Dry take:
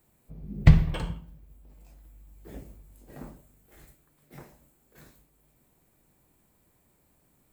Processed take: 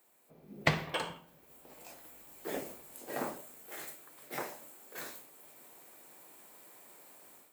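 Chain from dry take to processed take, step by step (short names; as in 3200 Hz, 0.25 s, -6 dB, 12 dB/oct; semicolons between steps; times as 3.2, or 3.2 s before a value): AGC gain up to 12 dB; HPF 470 Hz 12 dB/oct; gain +1.5 dB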